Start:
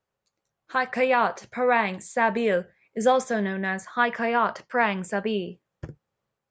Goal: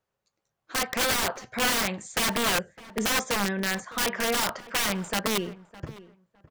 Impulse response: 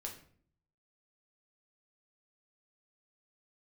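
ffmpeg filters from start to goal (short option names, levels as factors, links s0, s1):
-filter_complex "[0:a]aeval=exprs='(mod(9.44*val(0)+1,2)-1)/9.44':c=same,asplit=2[s0][s1];[s1]adelay=609,lowpass=f=2000:p=1,volume=0.126,asplit=2[s2][s3];[s3]adelay=609,lowpass=f=2000:p=1,volume=0.2[s4];[s0][s2][s4]amix=inputs=3:normalize=0"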